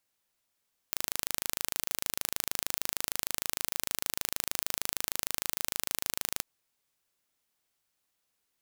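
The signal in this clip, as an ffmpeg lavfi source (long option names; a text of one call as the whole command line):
ffmpeg -f lavfi -i "aevalsrc='0.708*eq(mod(n,1664),0)':duration=5.49:sample_rate=44100" out.wav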